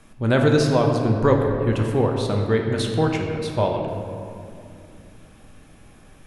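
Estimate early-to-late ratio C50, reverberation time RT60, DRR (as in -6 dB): 3.5 dB, 2.5 s, 1.0 dB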